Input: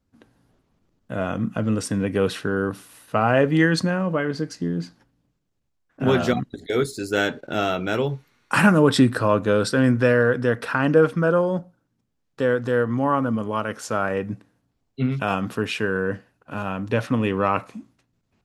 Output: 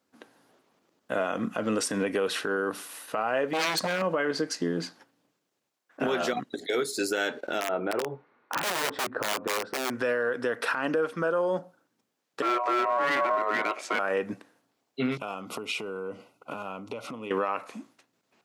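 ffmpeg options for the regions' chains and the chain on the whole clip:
ffmpeg -i in.wav -filter_complex "[0:a]asettb=1/sr,asplit=3[link_01][link_02][link_03];[link_01]atrim=end=3.534[link_04];[link_02]atrim=start=3.53:end=4.02,asetpts=PTS-STARTPTS,afade=type=in:duration=0.004:curve=qsin,afade=type=out:start_time=0.486:duration=0.004:curve=qsin,asubboost=boost=9.5:cutoff=120,aeval=exprs='0.106*(abs(mod(val(0)/0.106+3,4)-2)-1)':channel_layout=same[link_05];[link_03]atrim=start=4.016[link_06];[link_04][link_05]acrossfade=duration=0.004:curve1=hsin:curve2=qsin[link_07];[link_07][link_06]acrossfade=duration=0.004:curve1=qsin:curve2=hsin,asettb=1/sr,asplit=3[link_08][link_09][link_10];[link_08]atrim=end=7.604[link_11];[link_09]atrim=start=7.6:end=9.9,asetpts=PTS-STARTPTS,afade=type=in:duration=0.004:curve=qsin,afade=type=out:start_time=2.296:duration=0.004:curve=qsin,lowpass=1100,aeval=exprs='(mod(5.01*val(0)+1,2)-1)/5.01':channel_layout=same[link_12];[link_10]atrim=start=9.896[link_13];[link_11][link_12]acrossfade=duration=0.004:curve1=hsin:curve2=qsin[link_14];[link_14][link_13]acrossfade=duration=0.004:curve1=qsin:curve2=hsin,asettb=1/sr,asplit=3[link_15][link_16][link_17];[link_15]atrim=end=12.424[link_18];[link_16]atrim=start=12.42:end=13.99,asetpts=PTS-STARTPTS,afade=type=in:duration=0.004:curve=qsin,afade=type=out:start_time=1.566:duration=0.004:curve=qsin,aemphasis=mode=reproduction:type=75fm,asoftclip=type=hard:threshold=-22dB,aeval=exprs='val(0)*sin(2*PI*850*n/s)':channel_layout=same[link_19];[link_17]atrim=start=13.986[link_20];[link_18][link_19]acrossfade=duration=0.004:curve1=hsin:curve2=qsin[link_21];[link_21][link_20]acrossfade=duration=0.004:curve1=qsin:curve2=hsin,asettb=1/sr,asplit=3[link_22][link_23][link_24];[link_22]atrim=end=15.174[link_25];[link_23]atrim=start=15.17:end=17.31,asetpts=PTS-STARTPTS,afade=type=in:duration=0.004:curve=qsin,afade=type=out:start_time=2.136:duration=0.004:curve=qsin,asuperstop=centerf=1700:order=8:qfactor=3.2,lowshelf=frequency=210:gain=8.5,acompressor=threshold=-32dB:ratio=16:attack=3.2:release=140:knee=1:detection=peak[link_26];[link_24]atrim=start=17.306[link_27];[link_25][link_26]acrossfade=duration=0.004:curve1=hsin:curve2=qsin[link_28];[link_28][link_27]acrossfade=duration=0.004:curve1=qsin:curve2=hsin,highpass=390,acompressor=threshold=-28dB:ratio=6,alimiter=limit=-23.5dB:level=0:latency=1:release=56,volume=6dB" out.wav

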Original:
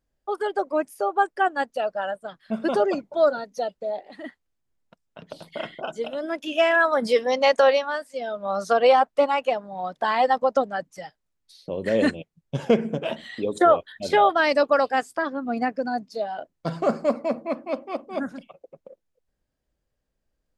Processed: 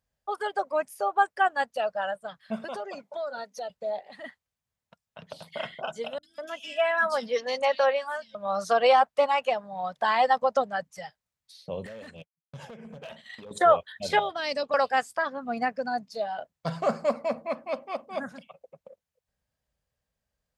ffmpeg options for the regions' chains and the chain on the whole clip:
ffmpeg -i in.wav -filter_complex "[0:a]asettb=1/sr,asplit=3[link_01][link_02][link_03];[link_01]atrim=end=2.644[link_04];[link_02]atrim=start=2.64:end=3.7,asetpts=PTS-STARTPTS,afade=type=in:duration=0.004:curve=qsin,afade=type=out:start_time=1.056:duration=0.004:curve=qsin,highpass=240,acompressor=threshold=-28dB:ratio=6:attack=3.2:release=140:knee=1:detection=peak[link_05];[link_03]atrim=start=3.696[link_06];[link_04][link_05]acrossfade=duration=0.004:curve1=hsin:curve2=qsin[link_07];[link_07][link_06]acrossfade=duration=0.004:curve1=qsin:curve2=hsin,asettb=1/sr,asplit=3[link_08][link_09][link_10];[link_08]atrim=end=6.184[link_11];[link_09]atrim=start=6.18:end=8.35,asetpts=PTS-STARTPTS,afade=type=in:duration=0.004:curve=qsin,afade=type=out:start_time=2.166:duration=0.004:curve=qsin,flanger=delay=3.4:depth=1.3:regen=-44:speed=1.4:shape=triangular,acrossover=split=180|3300[link_12][link_13][link_14];[link_14]adelay=50[link_15];[link_13]adelay=200[link_16];[link_12][link_16][link_15]amix=inputs=3:normalize=0,atrim=end_sample=95697[link_17];[link_10]atrim=start=8.346[link_18];[link_11][link_17]acrossfade=duration=0.004:curve1=hsin:curve2=qsin[link_19];[link_19][link_18]acrossfade=duration=0.004:curve1=qsin:curve2=hsin,asettb=1/sr,asplit=3[link_20][link_21][link_22];[link_20]atrim=end=11.864[link_23];[link_21]atrim=start=11.86:end=13.51,asetpts=PTS-STARTPTS,afade=type=in:duration=0.004:curve=qsin,afade=type=out:start_time=1.646:duration=0.004:curve=qsin,agate=range=-33dB:threshold=-36dB:ratio=3:release=100:detection=peak,acompressor=threshold=-34dB:ratio=10:attack=3.2:release=140:knee=1:detection=peak,volume=33.5dB,asoftclip=hard,volume=-33.5dB[link_24];[link_22]atrim=start=13.506[link_25];[link_23][link_24]acrossfade=duration=0.004:curve1=hsin:curve2=qsin[link_26];[link_26][link_25]acrossfade=duration=0.004:curve1=qsin:curve2=hsin,asettb=1/sr,asplit=3[link_27][link_28][link_29];[link_27]atrim=end=14.194[link_30];[link_28]atrim=start=14.19:end=14.74,asetpts=PTS-STARTPTS,afade=type=in:duration=0.004:curve=qsin,afade=type=out:start_time=0.546:duration=0.004:curve=qsin,acrossover=split=470|3000[link_31][link_32][link_33];[link_32]acompressor=threshold=-33dB:ratio=6:attack=3.2:release=140:knee=2.83:detection=peak[link_34];[link_31][link_34][link_33]amix=inputs=3:normalize=0,lowpass=7400[link_35];[link_29]atrim=start=14.736[link_36];[link_30][link_35]acrossfade=duration=0.004:curve1=hsin:curve2=qsin[link_37];[link_37][link_36]acrossfade=duration=0.004:curve1=qsin:curve2=hsin,highpass=60,equalizer=frequency=320:width_type=o:width=0.77:gain=-15,bandreject=frequency=1400:width=28" out.wav

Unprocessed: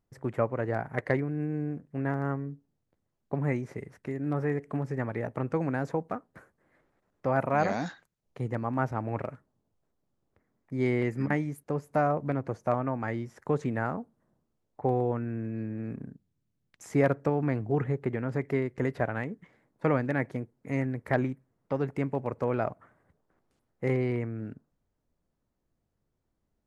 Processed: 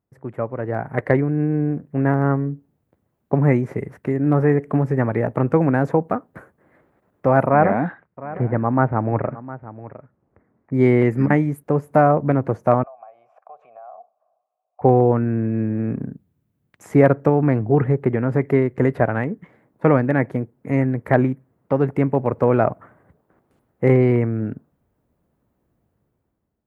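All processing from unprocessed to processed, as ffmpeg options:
ffmpeg -i in.wav -filter_complex "[0:a]asettb=1/sr,asplit=3[link_01][link_02][link_03];[link_01]atrim=end=7.464[link_04];[link_02]atrim=start=7.46:end=10.74,asetpts=PTS-STARTPTS,afade=type=in:duration=0.004:curve=qsin,afade=type=out:start_time=3.276:duration=0.004:curve=qsin,lowpass=frequency=2300:width=0.5412,lowpass=frequency=2300:width=1.3066,aecho=1:1:709:0.15,atrim=end_sample=144648[link_05];[link_03]atrim=start=10.736[link_06];[link_04][link_05]acrossfade=duration=0.004:curve1=hsin:curve2=qsin[link_07];[link_07][link_06]acrossfade=duration=0.004:curve1=qsin:curve2=hsin,asettb=1/sr,asplit=3[link_08][link_09][link_10];[link_08]atrim=end=12.834[link_11];[link_09]atrim=start=12.83:end=14.81,asetpts=PTS-STARTPTS,afade=type=in:duration=0.004:curve=qsin,afade=type=out:start_time=1.976:duration=0.004:curve=qsin,lowshelf=frequency=440:width_type=q:width=3:gain=-13,acompressor=threshold=-46dB:ratio=4:attack=3.2:release=140:knee=1:detection=peak,asplit=3[link_12][link_13][link_14];[link_12]bandpass=frequency=730:width_type=q:width=8,volume=0dB[link_15];[link_13]bandpass=frequency=1090:width_type=q:width=8,volume=-6dB[link_16];[link_14]bandpass=frequency=2440:width_type=q:width=8,volume=-9dB[link_17];[link_15][link_16][link_17]amix=inputs=3:normalize=0[link_18];[link_10]atrim=start=14.806[link_19];[link_11][link_18]acrossfade=duration=0.004:curve1=hsin:curve2=qsin[link_20];[link_20][link_19]acrossfade=duration=0.004:curve1=qsin:curve2=hsin,highpass=61,equalizer=frequency=5500:width_type=o:width=2:gain=-13,dynaudnorm=framelen=330:gausssize=5:maxgain=12.5dB,volume=1dB" out.wav

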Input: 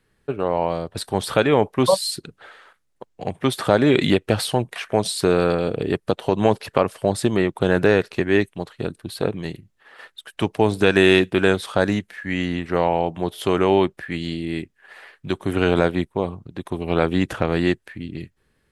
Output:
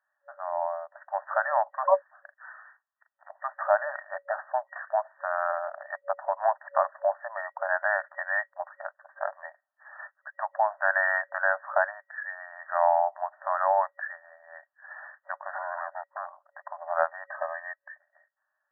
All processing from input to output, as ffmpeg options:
ffmpeg -i in.wav -filter_complex "[0:a]asettb=1/sr,asplit=3[link_01][link_02][link_03];[link_01]atrim=end=2.114[link_04];[link_02]atrim=start=2.11:end=3.3,asetpts=PTS-STARTPTS,afade=type=in:duration=0.004:curve=qsin,afade=type=out:start_time=1.186:duration=0.004:curve=qsin,asplit=2[link_05][link_06];[link_06]adelay=39,volume=-6dB[link_07];[link_05][link_07]amix=inputs=2:normalize=0,atrim=end_sample=52479,lowpass=frequency=2600:width_type=q:width=0.5098,lowpass=frequency=2600:width_type=q:width=0.6013,lowpass=frequency=2600:width_type=q:width=0.9,lowpass=frequency=2600:width_type=q:width=2.563,afreqshift=-3100[link_08];[link_03]atrim=start=3.296[link_09];[link_04][link_08]acrossfade=duration=0.004:curve1=hsin:curve2=qsin[link_10];[link_10][link_09]acrossfade=duration=0.004:curve1=qsin:curve2=hsin,asettb=1/sr,asplit=3[link_11][link_12][link_13];[link_11]atrim=end=15.554[link_14];[link_12]atrim=start=15.55:end=16.36,asetpts=PTS-STARTPTS,afade=type=in:duration=0.004:curve=qsin,afade=type=out:start_time=0.806:duration=0.004:curve=qsin,acrossover=split=230|510[link_15][link_16][link_17];[link_15]acompressor=threshold=-32dB:ratio=4[link_18];[link_16]acompressor=threshold=-26dB:ratio=4[link_19];[link_17]acompressor=threshold=-33dB:ratio=4[link_20];[link_18][link_19][link_20]amix=inputs=3:normalize=0,aeval=exprs='0.0531*(abs(mod(val(0)/0.0531+3,4)-2)-1)':channel_layout=same[link_21];[link_13]atrim=start=16.356[link_22];[link_14][link_21]acrossfade=duration=0.004:curve1=hsin:curve2=qsin[link_23];[link_23][link_22]acrossfade=duration=0.004:curve1=qsin:curve2=hsin,asettb=1/sr,asplit=3[link_24][link_25][link_26];[link_24]atrim=end=17.254[link_27];[link_25]atrim=start=17.25:end=18,asetpts=PTS-STARTPTS,afade=type=in:duration=0.004:curve=qsin,afade=type=out:start_time=0.746:duration=0.004:curve=qsin,equalizer=frequency=850:width=2.1:gain=-5.5,acompressor=mode=upward:threshold=-31dB:ratio=2.5:attack=3.2:release=140:knee=2.83:detection=peak,asuperstop=centerf=1400:order=12:qfactor=6.9[link_28];[link_26]atrim=start=17.996[link_29];[link_27][link_28]acrossfade=duration=0.004:curve1=hsin:curve2=qsin[link_30];[link_30][link_29]acrossfade=duration=0.004:curve1=qsin:curve2=hsin,afftfilt=real='re*between(b*sr/4096,570,1900)':imag='im*between(b*sr/4096,570,1900)':win_size=4096:overlap=0.75,dynaudnorm=framelen=200:gausssize=13:maxgain=8.5dB,volume=-6.5dB" out.wav

